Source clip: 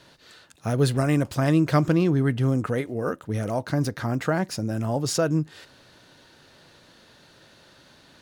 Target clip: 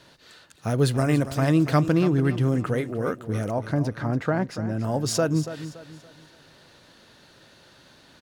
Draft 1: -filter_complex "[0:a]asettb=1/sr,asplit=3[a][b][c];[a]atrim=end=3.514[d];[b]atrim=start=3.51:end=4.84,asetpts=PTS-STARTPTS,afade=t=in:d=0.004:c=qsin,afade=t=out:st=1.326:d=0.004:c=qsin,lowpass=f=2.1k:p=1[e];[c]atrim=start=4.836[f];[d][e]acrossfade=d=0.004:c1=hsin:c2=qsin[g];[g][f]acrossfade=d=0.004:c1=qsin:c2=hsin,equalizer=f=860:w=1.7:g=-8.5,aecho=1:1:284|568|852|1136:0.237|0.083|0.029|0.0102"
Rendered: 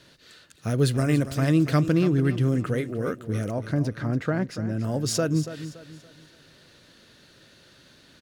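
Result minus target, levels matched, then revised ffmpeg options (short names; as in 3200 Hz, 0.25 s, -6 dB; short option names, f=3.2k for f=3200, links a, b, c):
1000 Hz band -4.5 dB
-filter_complex "[0:a]asettb=1/sr,asplit=3[a][b][c];[a]atrim=end=3.514[d];[b]atrim=start=3.51:end=4.84,asetpts=PTS-STARTPTS,afade=t=in:d=0.004:c=qsin,afade=t=out:st=1.326:d=0.004:c=qsin,lowpass=f=2.1k:p=1[e];[c]atrim=start=4.836[f];[d][e]acrossfade=d=0.004:c1=hsin:c2=qsin[g];[g][f]acrossfade=d=0.004:c1=qsin:c2=hsin,aecho=1:1:284|568|852|1136:0.237|0.083|0.029|0.0102"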